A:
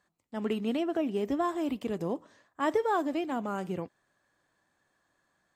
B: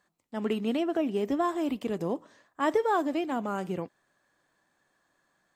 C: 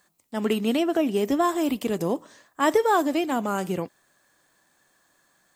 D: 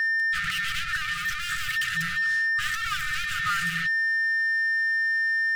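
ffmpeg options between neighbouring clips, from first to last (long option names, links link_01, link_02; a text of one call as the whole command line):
ffmpeg -i in.wav -af "equalizer=frequency=78:width=1.5:gain=-7.5,volume=2dB" out.wav
ffmpeg -i in.wav -af "crystalizer=i=2:c=0,volume=5dB" out.wav
ffmpeg -i in.wav -filter_complex "[0:a]aeval=exprs='val(0)+0.0112*sin(2*PI*1800*n/s)':channel_layout=same,asplit=2[link_01][link_02];[link_02]highpass=frequency=720:poles=1,volume=36dB,asoftclip=type=tanh:threshold=-8.5dB[link_03];[link_01][link_03]amix=inputs=2:normalize=0,lowpass=frequency=2500:poles=1,volume=-6dB,afftfilt=real='re*(1-between(b*sr/4096,180,1200))':imag='im*(1-between(b*sr/4096,180,1200))':win_size=4096:overlap=0.75,volume=-6dB" out.wav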